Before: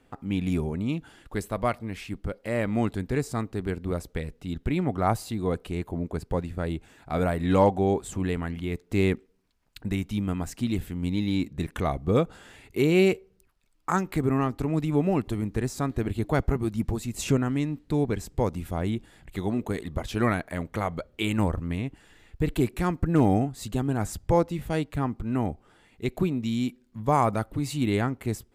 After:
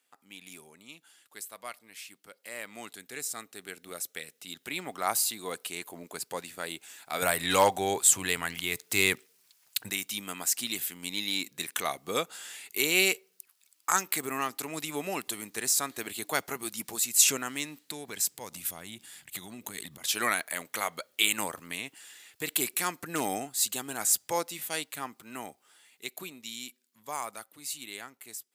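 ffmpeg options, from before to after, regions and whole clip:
-filter_complex "[0:a]asettb=1/sr,asplit=3[a][b][c];[a]atrim=end=2.954[d];[b]atrim=start=2.95:end=4.39,asetpts=PTS-STARTPTS,afade=t=in:d=0.004:c=qsin,afade=t=out:st=1.436:d=0.004:c=qsin,equalizer=f=980:w=7.4:g=-8.5,bandreject=f=4.7k:w=13[e];[c]atrim=start=4.386[f];[d][e]acrossfade=d=0.004:c1=hsin:c2=qsin[g];[g][f]acrossfade=d=0.004:c1=qsin:c2=hsin,asettb=1/sr,asplit=3[h][i][j];[h]atrim=end=7.224[k];[i]atrim=start=7.22:end=9.9,asetpts=PTS-STARTPTS,afade=t=in:d=0.004:c=qsin,afade=t=out:st=2.676:d=0.004:c=qsin,lowshelf=f=160:t=q:w=1.5:g=8,acontrast=21[l];[j]atrim=start=9.896[m];[k][l]acrossfade=d=0.004:c1=hsin:c2=qsin[n];[n][m]acrossfade=d=0.004:c1=qsin:c2=hsin,asettb=1/sr,asplit=3[o][p][q];[o]atrim=end=17.834[r];[p]atrim=start=17.83:end=20.04,asetpts=PTS-STARTPTS,afade=t=in:d=0.004:c=qsin,afade=t=out:st=2.206:d=0.004:c=qsin,asubboost=boost=9.5:cutoff=200,acompressor=threshold=-24dB:ratio=12:attack=3.2:release=140:knee=1:detection=peak[s];[q]atrim=start=20.036[t];[r][s]acrossfade=d=0.004:c1=hsin:c2=qsin[u];[u][t]acrossfade=d=0.004:c1=qsin:c2=hsin,highpass=140,aderivative,dynaudnorm=f=720:g=11:m=13.5dB,volume=1.5dB"

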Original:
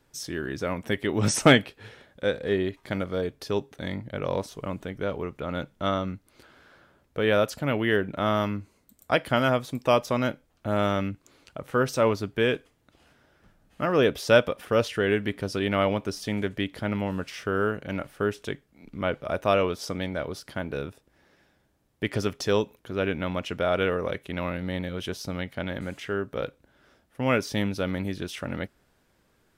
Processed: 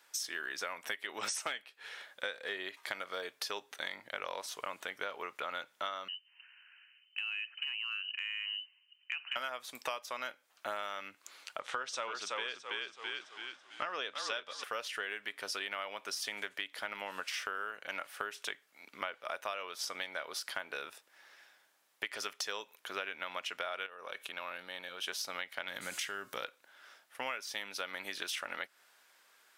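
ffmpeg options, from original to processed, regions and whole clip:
-filter_complex "[0:a]asettb=1/sr,asplit=3[a][b][c];[a]atrim=end=6.084[d];[b]atrim=start=6.08:end=9.36,asetpts=PTS-STARTPTS,afade=t=in:d=0.004:c=qsin,afade=t=out:st=3.276:d=0.004:c=qsin,lowpass=f=2.6k:t=q:w=0.5098,lowpass=f=2.6k:t=q:w=0.6013,lowpass=f=2.6k:t=q:w=0.9,lowpass=f=2.6k:t=q:w=2.563,afreqshift=-3100,acompressor=threshold=-27dB:ratio=2.5:attack=3.2:release=140:knee=1:detection=peak,aderivative[e];[c]atrim=start=9.356[f];[d][e]acrossfade=d=0.004:c1=hsin:c2=qsin[g];[g][f]acrossfade=d=0.004:c1=qsin:c2=hsin,asettb=1/sr,asplit=3[h][i][j];[h]atrim=end=11.604[k];[i]atrim=start=11.6:end=14.64,asetpts=PTS-STARTPTS,afade=t=in:d=0.004:c=qsin,afade=t=out:st=3.036:d=0.004:c=qsin,lowpass=f=8.1k:w=0.5412,lowpass=f=8.1k:w=1.3066,equalizer=f=3.5k:w=4.5:g=6,asplit=6[l][m][n][o][p][q];[m]adelay=331,afreqshift=-38,volume=-4.5dB[r];[n]adelay=662,afreqshift=-76,volume=-13.4dB[s];[o]adelay=993,afreqshift=-114,volume=-22.2dB[t];[p]adelay=1324,afreqshift=-152,volume=-31.1dB[u];[q]adelay=1655,afreqshift=-190,volume=-40dB[v];[l][r][s][t][u][v]amix=inputs=6:normalize=0,atrim=end_sample=134064[w];[j]atrim=start=14.636[x];[k][w]acrossfade=d=0.004:c1=hsin:c2=qsin[y];[y][x]acrossfade=d=0.004:c1=qsin:c2=hsin,asettb=1/sr,asplit=3[z][aa][ab];[z]atrim=end=23.864[ac];[aa]atrim=start=23.86:end=25.08,asetpts=PTS-STARTPTS,afade=t=in:d=0.004:c=qsin,afade=t=out:st=1.216:d=0.004:c=qsin,bandreject=f=2k:w=6.5,acompressor=threshold=-39dB:ratio=2.5:attack=3.2:release=140:knee=1:detection=peak[ad];[ab]atrim=start=25.076[ae];[ac][ad]acrossfade=d=0.004:c1=hsin:c2=qsin[af];[af][ae]acrossfade=d=0.004:c1=qsin:c2=hsin,asettb=1/sr,asplit=3[ag][ah][ai];[ag]atrim=end=25.684[aj];[ah]atrim=start=25.68:end=26.44,asetpts=PTS-STARTPTS,afade=t=in:d=0.004:c=qsin,afade=t=out:st=0.756:d=0.004:c=qsin,acompressor=threshold=-31dB:ratio=2.5:attack=3.2:release=140:knee=1:detection=peak,bass=f=250:g=13,treble=f=4k:g=10,bandreject=f=362.3:t=h:w=4,bandreject=f=724.6:t=h:w=4,bandreject=f=1.0869k:t=h:w=4,bandreject=f=1.4492k:t=h:w=4,bandreject=f=1.8115k:t=h:w=4,bandreject=f=2.1738k:t=h:w=4,bandreject=f=2.5361k:t=h:w=4,bandreject=f=2.8984k:t=h:w=4,bandreject=f=3.2607k:t=h:w=4,bandreject=f=3.623k:t=h:w=4,bandreject=f=3.9853k:t=h:w=4,bandreject=f=4.3476k:t=h:w=4,bandreject=f=4.7099k:t=h:w=4,bandreject=f=5.0722k:t=h:w=4,bandreject=f=5.4345k:t=h:w=4,bandreject=f=5.7968k:t=h:w=4,bandreject=f=6.1591k:t=h:w=4,bandreject=f=6.5214k:t=h:w=4,bandreject=f=6.8837k:t=h:w=4,bandreject=f=7.246k:t=h:w=4,bandreject=f=7.6083k:t=h:w=4,bandreject=f=7.9706k:t=h:w=4,bandreject=f=8.3329k:t=h:w=4,bandreject=f=8.6952k:t=h:w=4,bandreject=f=9.0575k:t=h:w=4,bandreject=f=9.4198k:t=h:w=4,bandreject=f=9.7821k:t=h:w=4,bandreject=f=10.1444k:t=h:w=4,bandreject=f=10.5067k:t=h:w=4,bandreject=f=10.869k:t=h:w=4,bandreject=f=11.2313k:t=h:w=4,bandreject=f=11.5936k:t=h:w=4,bandreject=f=11.9559k:t=h:w=4,bandreject=f=12.3182k:t=h:w=4,bandreject=f=12.6805k:t=h:w=4,bandreject=f=13.0428k:t=h:w=4,bandreject=f=13.4051k:t=h:w=4,bandreject=f=13.7674k:t=h:w=4[ak];[ai]atrim=start=26.436[al];[aj][ak]acrossfade=d=0.004:c1=hsin:c2=qsin[am];[am][al]acrossfade=d=0.004:c1=qsin:c2=hsin,highpass=1.1k,acompressor=threshold=-41dB:ratio=16,volume=6.5dB"

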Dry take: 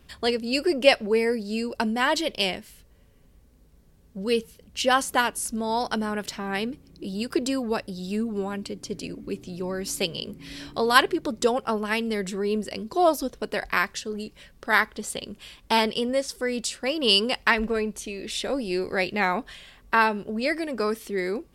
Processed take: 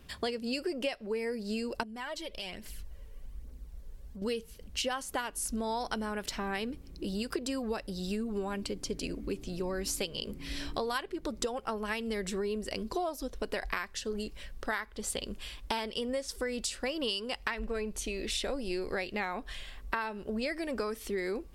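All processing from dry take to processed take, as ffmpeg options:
-filter_complex "[0:a]asettb=1/sr,asplit=3[a][b][c];[a]atrim=end=1.834[d];[b]atrim=start=1.83:end=4.22,asetpts=PTS-STARTPTS,afade=t=in:d=0.004:c=qsin,afade=t=out:st=2.386:d=0.004:c=qsin,aphaser=in_gain=1:out_gain=1:delay=2.3:decay=0.44:speed=1.2:type=triangular,acompressor=threshold=-42dB:ratio=3:attack=3.2:release=140:knee=1:detection=peak[e];[c]atrim=start=4.216[f];[d][e]acrossfade=d=0.004:c1=hsin:c2=qsin[g];[g][f]acrossfade=d=0.004:c1=qsin:c2=hsin,asubboost=boost=6:cutoff=50,acompressor=threshold=-30dB:ratio=16"

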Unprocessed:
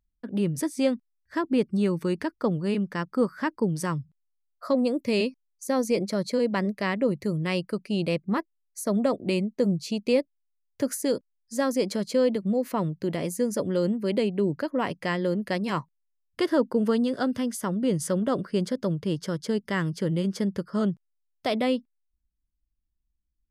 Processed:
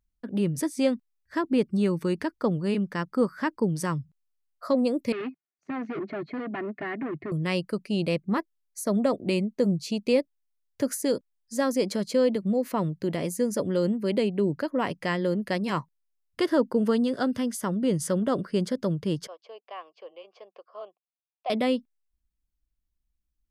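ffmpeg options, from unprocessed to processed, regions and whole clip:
-filter_complex "[0:a]asettb=1/sr,asplit=3[a][b][c];[a]atrim=end=5.124[d];[b]atrim=start=5.12:end=7.32,asetpts=PTS-STARTPTS,afade=t=in:d=0.004:c=qsin,afade=t=out:st=2.196:d=0.004:c=qsin,aecho=1:1:2.8:0.93,atrim=end_sample=97020,asoftclip=type=hard:threshold=-28dB,highpass=130,equalizer=f=160:t=q:w=4:g=9,equalizer=f=460:t=q:w=4:g=-7,equalizer=f=1k:t=q:w=4:g=-6,lowpass=f=2.3k:w=0.5412,lowpass=f=2.3k:w=1.3066[e];[c]atrim=start=7.316[f];[d][e]acrossfade=d=0.004:c1=hsin:c2=qsin[g];[g][f]acrossfade=d=0.004:c1=qsin:c2=hsin,asettb=1/sr,asplit=3[h][i][j];[h]atrim=end=19.274[k];[i]atrim=start=19.27:end=21.5,asetpts=PTS-STARTPTS,afade=t=in:d=0.004:c=qsin,afade=t=out:st=2.226:d=0.004:c=qsin,asplit=3[l][m][n];[l]bandpass=f=730:t=q:w=8,volume=0dB[o];[m]bandpass=f=1.09k:t=q:w=8,volume=-6dB[p];[n]bandpass=f=2.44k:t=q:w=8,volume=-9dB[q];[o][p][q]amix=inputs=3:normalize=0,highpass=f=390:w=0.5412,highpass=f=390:w=1.3066,equalizer=f=510:t=q:w=4:g=3,equalizer=f=970:t=q:w=4:g=7,equalizer=f=1.4k:t=q:w=4:g=-6,equalizer=f=2k:t=q:w=4:g=8,equalizer=f=2.9k:t=q:w=4:g=6,equalizer=f=4.5k:t=q:w=4:g=3,lowpass=f=6.3k:w=0.5412,lowpass=f=6.3k:w=1.3066[r];[j]atrim=start=21.496[s];[k][r]acrossfade=d=0.004:c1=hsin:c2=qsin[t];[t][s]acrossfade=d=0.004:c1=qsin:c2=hsin"

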